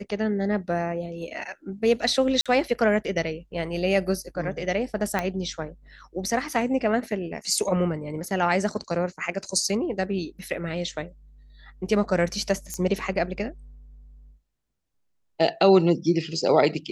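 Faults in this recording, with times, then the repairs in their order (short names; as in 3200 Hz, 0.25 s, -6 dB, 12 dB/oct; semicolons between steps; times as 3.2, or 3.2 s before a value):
2.41–2.46 gap 46 ms
5.19 pop -12 dBFS
12.74 pop -17 dBFS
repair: de-click; interpolate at 2.41, 46 ms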